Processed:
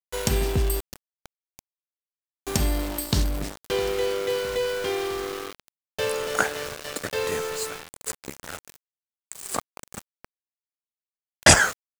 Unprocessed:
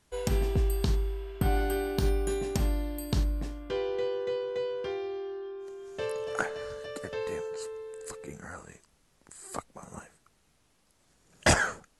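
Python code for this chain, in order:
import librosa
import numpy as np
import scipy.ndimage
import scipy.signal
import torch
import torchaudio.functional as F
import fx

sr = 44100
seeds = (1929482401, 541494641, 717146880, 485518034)

p1 = fx.rider(x, sr, range_db=3, speed_s=0.5)
p2 = x + (p1 * librosa.db_to_amplitude(-1.5))
p3 = scipy.signal.sosfilt(scipy.signal.butter(2, 42.0, 'highpass', fs=sr, output='sos'), p2)
p4 = fx.high_shelf(p3, sr, hz=2200.0, db=7.5)
p5 = fx.tube_stage(p4, sr, drive_db=35.0, bias=0.5, at=(0.79, 2.46), fade=0.02)
p6 = fx.echo_feedback(p5, sr, ms=659, feedback_pct=59, wet_db=-17.0)
y = np.where(np.abs(p6) >= 10.0 ** (-28.5 / 20.0), p6, 0.0)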